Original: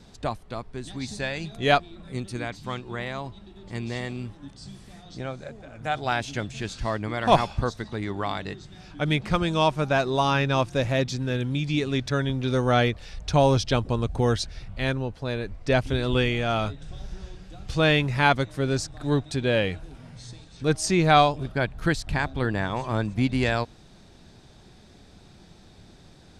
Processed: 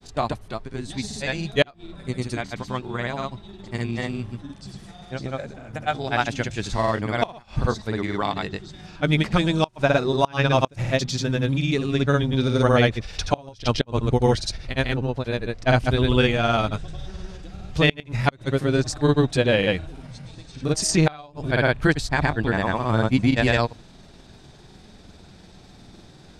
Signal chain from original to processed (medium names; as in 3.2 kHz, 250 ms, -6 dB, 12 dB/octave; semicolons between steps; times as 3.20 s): hum notches 50/100 Hz; granulator 100 ms, grains 20 per s, pitch spread up and down by 0 st; inverted gate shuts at -11 dBFS, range -28 dB; trim +5.5 dB